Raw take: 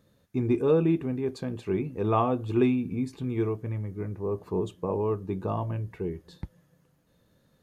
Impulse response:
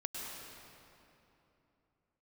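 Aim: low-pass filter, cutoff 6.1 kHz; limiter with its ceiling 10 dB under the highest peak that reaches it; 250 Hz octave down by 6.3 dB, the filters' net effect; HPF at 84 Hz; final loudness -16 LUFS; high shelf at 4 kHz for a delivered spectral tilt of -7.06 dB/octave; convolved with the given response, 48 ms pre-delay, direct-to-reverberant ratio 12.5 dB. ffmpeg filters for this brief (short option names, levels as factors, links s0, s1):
-filter_complex "[0:a]highpass=84,lowpass=6100,equalizer=f=250:t=o:g=-8.5,highshelf=f=4000:g=-6.5,alimiter=limit=0.0794:level=0:latency=1,asplit=2[s0][s1];[1:a]atrim=start_sample=2205,adelay=48[s2];[s1][s2]afir=irnorm=-1:irlink=0,volume=0.211[s3];[s0][s3]amix=inputs=2:normalize=0,volume=7.94"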